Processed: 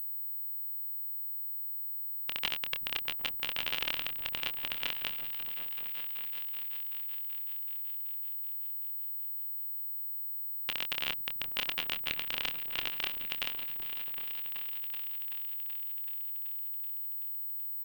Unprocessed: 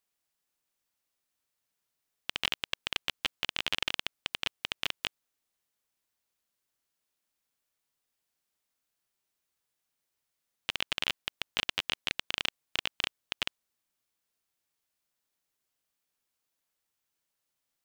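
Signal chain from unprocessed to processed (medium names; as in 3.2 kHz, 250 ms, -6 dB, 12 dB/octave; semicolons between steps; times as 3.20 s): doubling 26 ms -8 dB; delay with an opening low-pass 380 ms, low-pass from 200 Hz, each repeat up 2 oct, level -6 dB; class-D stage that switches slowly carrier 16 kHz; trim -3.5 dB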